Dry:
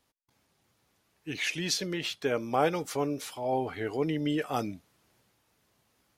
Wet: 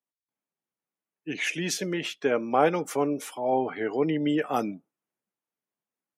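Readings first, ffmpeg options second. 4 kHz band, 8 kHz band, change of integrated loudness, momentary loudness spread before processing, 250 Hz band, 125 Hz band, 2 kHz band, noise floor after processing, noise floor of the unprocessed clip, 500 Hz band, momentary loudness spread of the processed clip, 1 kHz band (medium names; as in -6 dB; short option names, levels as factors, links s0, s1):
-1.5 dB, +1.5 dB, +3.5 dB, 8 LU, +4.5 dB, 0.0 dB, +3.0 dB, under -85 dBFS, -73 dBFS, +4.5 dB, 8 LU, +4.5 dB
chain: -af "highpass=f=160:w=0.5412,highpass=f=160:w=1.3066,afftdn=nr=26:nf=-52,equalizer=f=4300:t=o:w=0.71:g=-10.5,volume=1.68"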